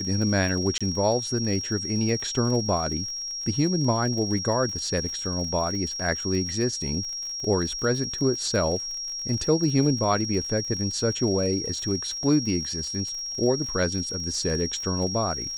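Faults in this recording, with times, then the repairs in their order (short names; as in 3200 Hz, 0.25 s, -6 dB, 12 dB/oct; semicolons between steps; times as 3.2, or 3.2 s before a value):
crackle 50/s -33 dBFS
tone 5600 Hz -30 dBFS
0.78–0.81 gap 26 ms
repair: de-click; notch 5600 Hz, Q 30; interpolate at 0.78, 26 ms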